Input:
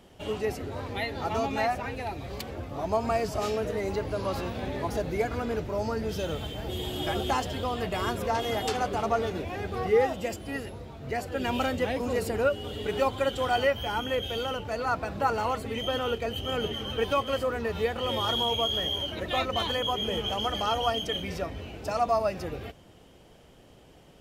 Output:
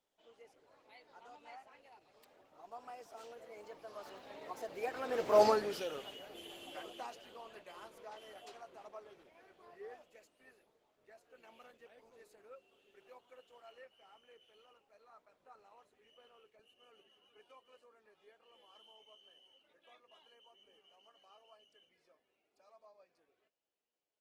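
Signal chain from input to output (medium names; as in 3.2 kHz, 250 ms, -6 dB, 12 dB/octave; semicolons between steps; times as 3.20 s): Doppler pass-by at 5.42 s, 24 m/s, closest 2.2 m; high-pass 440 Hz 12 dB/octave; trim +8.5 dB; Opus 16 kbps 48 kHz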